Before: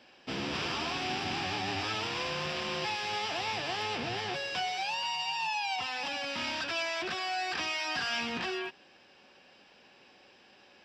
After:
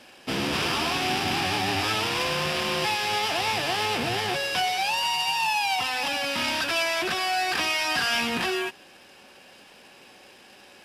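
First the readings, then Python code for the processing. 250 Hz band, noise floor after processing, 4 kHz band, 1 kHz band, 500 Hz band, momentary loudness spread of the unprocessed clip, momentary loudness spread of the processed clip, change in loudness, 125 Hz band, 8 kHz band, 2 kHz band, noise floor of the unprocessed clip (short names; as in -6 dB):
+8.0 dB, -51 dBFS, +8.0 dB, +8.0 dB, +8.0 dB, 3 LU, 3 LU, +8.0 dB, +8.0 dB, +11.5 dB, +8.0 dB, -60 dBFS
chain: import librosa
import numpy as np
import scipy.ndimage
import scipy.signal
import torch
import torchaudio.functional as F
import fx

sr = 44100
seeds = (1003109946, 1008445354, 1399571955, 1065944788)

y = fx.cvsd(x, sr, bps=64000)
y = y * librosa.db_to_amplitude(8.0)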